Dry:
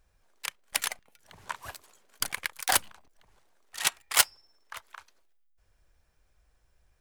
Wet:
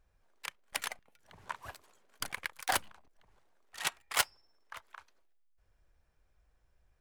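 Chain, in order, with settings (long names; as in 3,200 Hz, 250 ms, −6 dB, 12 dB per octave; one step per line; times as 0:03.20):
high-shelf EQ 3,400 Hz −8 dB
level −3 dB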